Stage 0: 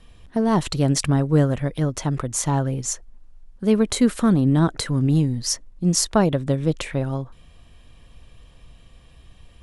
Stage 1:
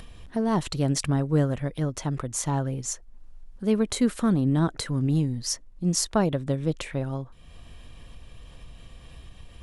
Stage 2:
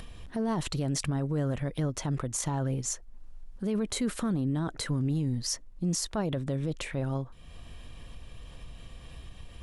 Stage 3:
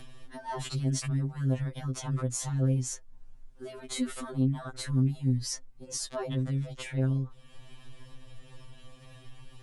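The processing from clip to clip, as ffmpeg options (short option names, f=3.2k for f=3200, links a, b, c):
-af "acompressor=mode=upward:threshold=-29dB:ratio=2.5,volume=-5dB"
-af "alimiter=limit=-22dB:level=0:latency=1:release=14"
-af "afftfilt=real='re*2.45*eq(mod(b,6),0)':imag='im*2.45*eq(mod(b,6),0)':win_size=2048:overlap=0.75"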